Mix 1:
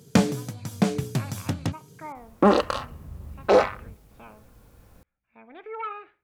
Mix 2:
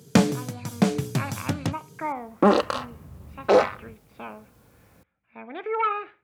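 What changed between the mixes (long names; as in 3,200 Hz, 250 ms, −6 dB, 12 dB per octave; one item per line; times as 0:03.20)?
speech +9.0 dB
first sound: send on
master: add high-pass filter 93 Hz 12 dB per octave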